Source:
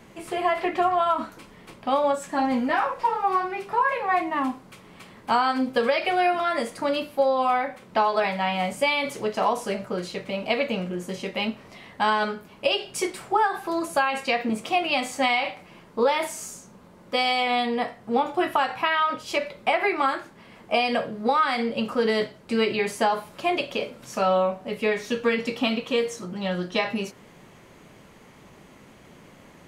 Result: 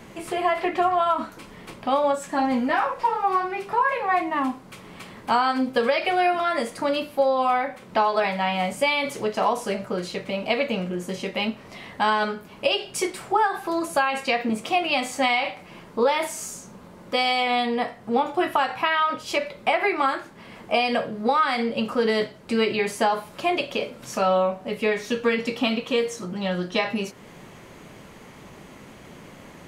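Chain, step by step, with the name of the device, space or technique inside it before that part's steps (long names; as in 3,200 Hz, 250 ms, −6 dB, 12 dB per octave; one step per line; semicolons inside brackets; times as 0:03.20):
parallel compression (in parallel at −1.5 dB: downward compressor, threshold −40 dBFS, peak gain reduction 21 dB)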